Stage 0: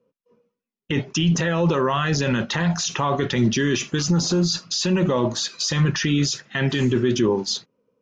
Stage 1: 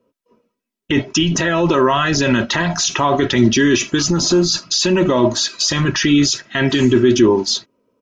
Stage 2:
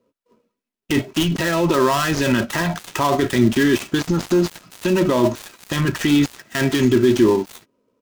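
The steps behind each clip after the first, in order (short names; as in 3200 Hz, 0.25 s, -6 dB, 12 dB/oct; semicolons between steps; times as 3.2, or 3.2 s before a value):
comb 3.1 ms, depth 53%; gain +6 dB
switching dead time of 0.12 ms; gain -2.5 dB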